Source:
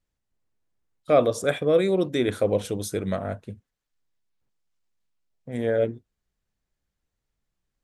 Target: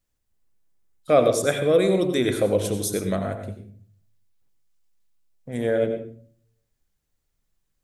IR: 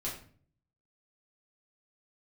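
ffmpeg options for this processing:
-filter_complex "[0:a]highshelf=f=6800:g=9.5,asplit=2[s0][s1];[1:a]atrim=start_sample=2205,adelay=83[s2];[s1][s2]afir=irnorm=-1:irlink=0,volume=0.335[s3];[s0][s3]amix=inputs=2:normalize=0,volume=1.12"

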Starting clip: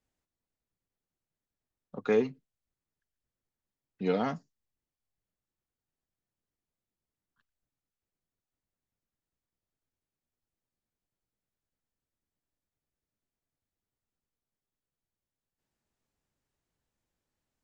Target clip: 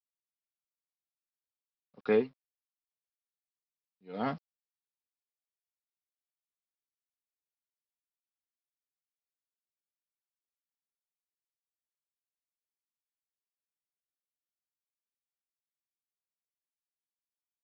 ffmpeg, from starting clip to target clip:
-af "aresample=11025,aeval=exprs='val(0)*gte(abs(val(0)),0.00376)':c=same,aresample=44100,aeval=exprs='val(0)*pow(10,-38*(0.5-0.5*cos(2*PI*1.4*n/s))/20)':c=same"

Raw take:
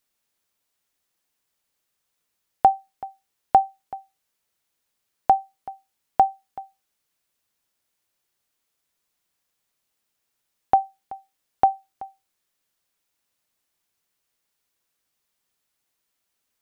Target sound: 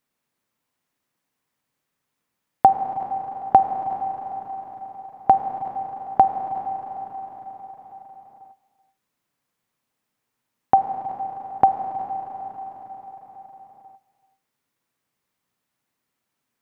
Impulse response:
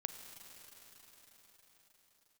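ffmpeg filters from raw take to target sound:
-filter_complex "[0:a]equalizer=f=125:t=o:w=1:g=11,equalizer=f=250:t=o:w=1:g=10,equalizer=f=500:t=o:w=1:g=4,equalizer=f=1000:t=o:w=1:g=7,equalizer=f=2000:t=o:w=1:g=5[s0];[1:a]atrim=start_sample=2205[s1];[s0][s1]afir=irnorm=-1:irlink=0,volume=0.708"

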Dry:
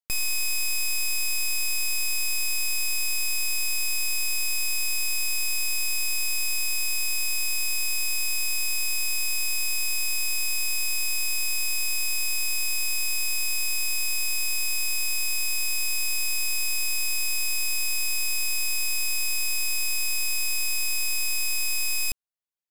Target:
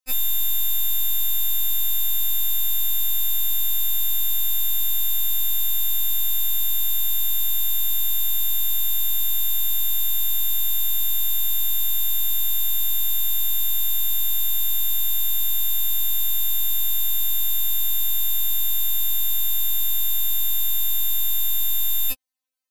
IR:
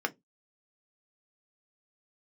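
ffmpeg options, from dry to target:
-af "lowshelf=f=150:g=-11.5,afftfilt=real='re*3.46*eq(mod(b,12),0)':imag='im*3.46*eq(mod(b,12),0)':win_size=2048:overlap=0.75,volume=2.66"

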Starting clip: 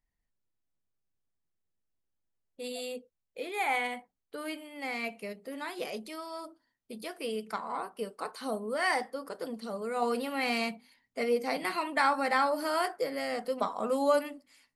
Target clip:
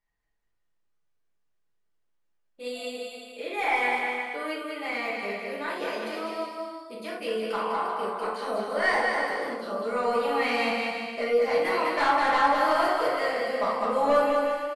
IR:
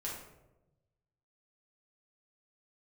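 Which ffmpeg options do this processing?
-filter_complex "[0:a]aeval=exprs='0.251*sin(PI/2*2.24*val(0)/0.251)':c=same,aecho=1:1:200|350|462.5|546.9|610.2:0.631|0.398|0.251|0.158|0.1,asplit=2[s0][s1];[s1]highpass=f=720:p=1,volume=2.82,asoftclip=type=tanh:threshold=0.668[s2];[s0][s2]amix=inputs=2:normalize=0,lowpass=f=2600:p=1,volume=0.501[s3];[1:a]atrim=start_sample=2205,afade=t=out:st=0.16:d=0.01,atrim=end_sample=7497[s4];[s3][s4]afir=irnorm=-1:irlink=0,volume=0.398"

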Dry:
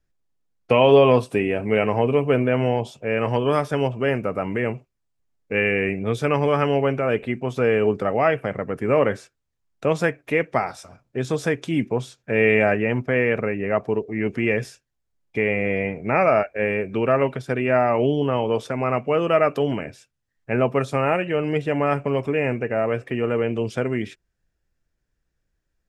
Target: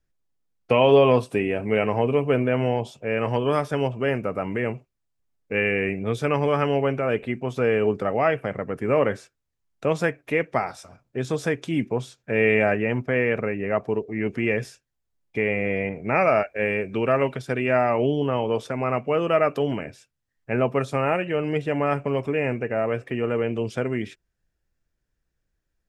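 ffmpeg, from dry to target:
-filter_complex "[0:a]asettb=1/sr,asplit=3[s0][s1][s2];[s0]atrim=end=15.894[s3];[s1]atrim=start=15.89:end=17.94,asetpts=PTS-STARTPTS,afade=t=in:d=0.004:c=qsin,afade=t=out:st=2.046:d=0.004:c=qsin,adynamicequalizer=threshold=0.0251:dfrequency=2100:dqfactor=0.7:tfrequency=2100:tqfactor=0.7:attack=5:release=100:ratio=0.375:range=2:mode=boostabove:tftype=highshelf[s4];[s2]atrim=start=17.936[s5];[s3][s4]acrossfade=d=0.004:c1=hsin:c2=qsin[s6];[s6][s5]acrossfade=d=0.004:c1=qsin:c2=hsin,volume=0.794"

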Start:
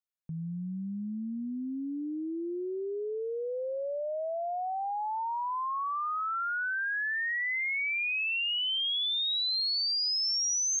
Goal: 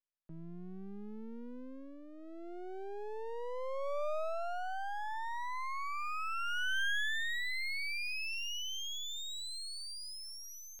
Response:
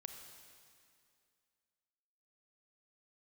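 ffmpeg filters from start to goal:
-filter_complex "[0:a]acrossover=split=2700[s0][s1];[s1]acompressor=threshold=0.0126:ratio=4:attack=1:release=60[s2];[s0][s2]amix=inputs=2:normalize=0,highpass=170,equalizer=f=300:t=q:w=4:g=-9,equalizer=f=600:t=q:w=4:g=6,equalizer=f=1600:t=q:w=4:g=6,lowpass=f=5400:w=0.5412,lowpass=f=5400:w=1.3066,aeval=exprs='max(val(0),0)':c=same,volume=0.708"

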